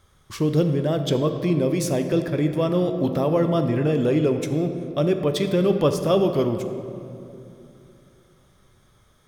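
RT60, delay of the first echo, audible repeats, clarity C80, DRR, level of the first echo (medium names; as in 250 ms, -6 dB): 2.8 s, no echo, no echo, 8.5 dB, 6.5 dB, no echo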